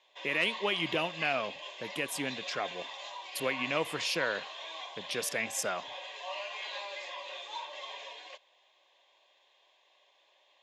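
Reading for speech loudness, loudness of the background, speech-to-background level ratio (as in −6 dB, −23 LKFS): −33.0 LKFS, −41.0 LKFS, 8.0 dB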